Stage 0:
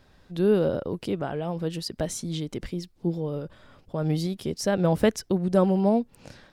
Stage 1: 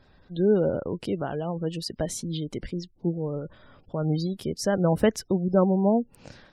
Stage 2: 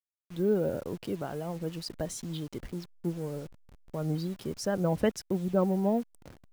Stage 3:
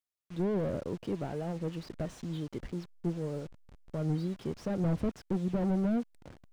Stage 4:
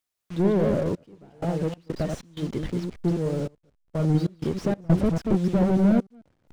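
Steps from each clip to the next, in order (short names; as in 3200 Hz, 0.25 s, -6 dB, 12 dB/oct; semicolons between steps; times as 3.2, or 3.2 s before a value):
spectral gate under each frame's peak -30 dB strong
level-crossing sampler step -40.5 dBFS; gain -5.5 dB
slew limiter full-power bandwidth 13 Hz
reverse delay 0.148 s, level -4 dB; step gate "xxxxxx...xx.xx.x" 95 bpm -24 dB; gain +8.5 dB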